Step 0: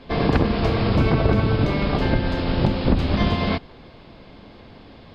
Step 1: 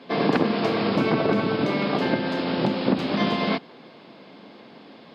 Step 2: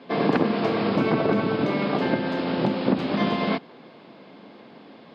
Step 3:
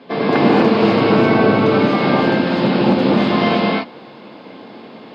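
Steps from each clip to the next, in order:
HPF 180 Hz 24 dB/oct
high shelf 4400 Hz -9 dB
non-linear reverb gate 0.28 s rising, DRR -5 dB; gain +3.5 dB

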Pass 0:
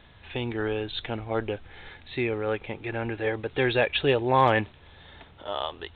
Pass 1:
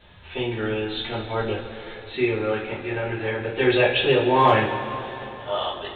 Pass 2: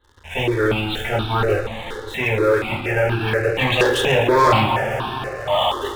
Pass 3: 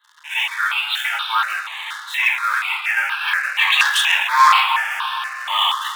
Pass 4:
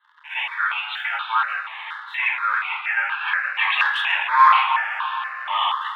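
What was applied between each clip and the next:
two-slope reverb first 0.31 s, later 3.4 s, from -17 dB, DRR -9.5 dB; gain -5.5 dB
sample leveller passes 3; step phaser 4.2 Hz 660–2000 Hz
steep high-pass 980 Hz 48 dB/oct; gain +6 dB
air absorption 490 m; gain +1.5 dB

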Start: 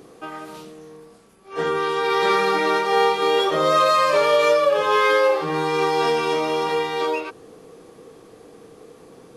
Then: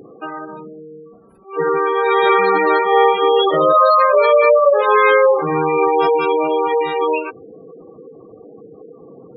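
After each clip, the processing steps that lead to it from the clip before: spectral gate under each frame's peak -15 dB strong; gain +6 dB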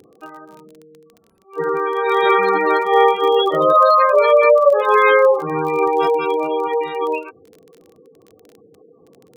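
bell 89 Hz +10 dB 0.24 oct; crackle 29/s -23 dBFS; upward expander 1.5:1, over -30 dBFS; gain +1 dB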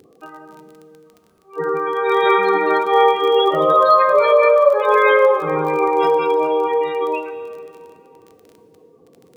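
plate-style reverb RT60 2.8 s, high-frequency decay 0.75×, DRR 8 dB; gain -1 dB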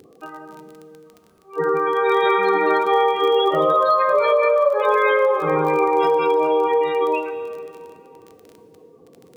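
compressor, threshold -15 dBFS, peak gain reduction 8 dB; gain +1.5 dB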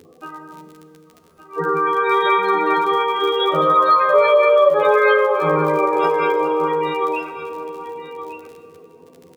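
doubler 12 ms -2.5 dB; echo 1.165 s -12 dB

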